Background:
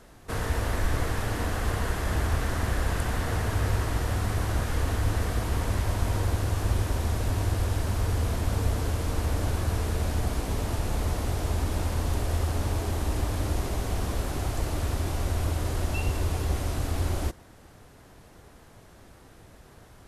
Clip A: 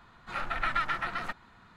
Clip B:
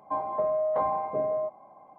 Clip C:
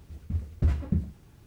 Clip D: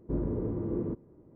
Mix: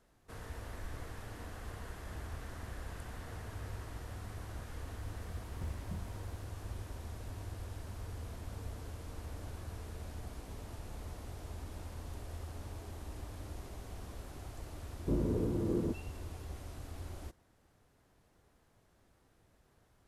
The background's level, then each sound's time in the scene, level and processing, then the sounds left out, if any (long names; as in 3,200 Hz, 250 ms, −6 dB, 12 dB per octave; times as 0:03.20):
background −17.5 dB
0:04.99: mix in C −17.5 dB + mu-law and A-law mismatch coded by mu
0:14.98: mix in D −1 dB
not used: A, B